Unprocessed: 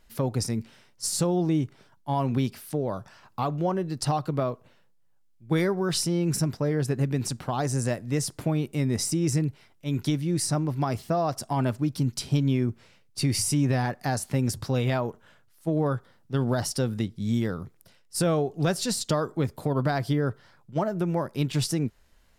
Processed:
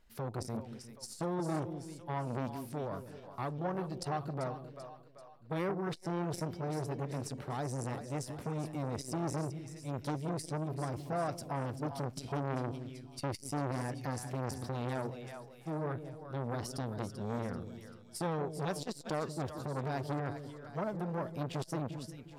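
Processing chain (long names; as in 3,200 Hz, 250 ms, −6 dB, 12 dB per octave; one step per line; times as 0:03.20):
high-shelf EQ 3,500 Hz −4.5 dB
echo with a time of its own for lows and highs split 520 Hz, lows 177 ms, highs 388 ms, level −11 dB
saturating transformer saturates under 870 Hz
level −6.5 dB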